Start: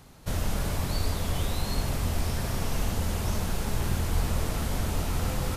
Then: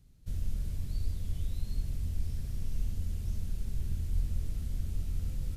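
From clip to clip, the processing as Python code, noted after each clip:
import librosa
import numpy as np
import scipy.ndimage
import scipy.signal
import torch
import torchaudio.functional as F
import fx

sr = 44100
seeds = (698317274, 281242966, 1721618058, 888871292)

y = fx.tone_stack(x, sr, knobs='10-0-1')
y = F.gain(torch.from_numpy(y), 3.0).numpy()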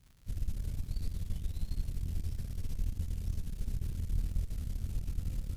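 y = fx.cheby_harmonics(x, sr, harmonics=(4,), levels_db=(-14,), full_scale_db=-19.5)
y = fx.dmg_crackle(y, sr, seeds[0], per_s=170.0, level_db=-48.0)
y = F.gain(torch.from_numpy(y), -2.5).numpy()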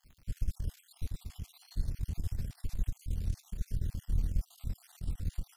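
y = fx.spec_dropout(x, sr, seeds[1], share_pct=48)
y = F.gain(torch.from_numpy(y), 2.5).numpy()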